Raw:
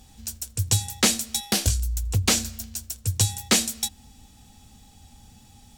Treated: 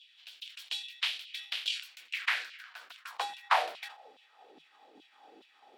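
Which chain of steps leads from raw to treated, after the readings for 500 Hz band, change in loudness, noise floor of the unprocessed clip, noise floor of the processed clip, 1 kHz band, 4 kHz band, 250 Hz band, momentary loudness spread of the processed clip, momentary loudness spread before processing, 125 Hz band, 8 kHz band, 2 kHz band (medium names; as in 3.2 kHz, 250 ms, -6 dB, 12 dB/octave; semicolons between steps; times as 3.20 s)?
-10.0 dB, -10.0 dB, -53 dBFS, -64 dBFS, +2.0 dB, -8.0 dB, under -30 dB, 18 LU, 12 LU, under -40 dB, -28.0 dB, -2.0 dB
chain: spectral peaks clipped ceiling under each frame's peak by 19 dB; distance through air 400 m; LFO high-pass saw down 2.4 Hz 260–3400 Hz; peaking EQ 160 Hz +10 dB 0.21 oct; high-pass sweep 3.1 kHz -> 320 Hz, 1.65–4.77 s; decay stretcher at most 120 dB/s; trim -4.5 dB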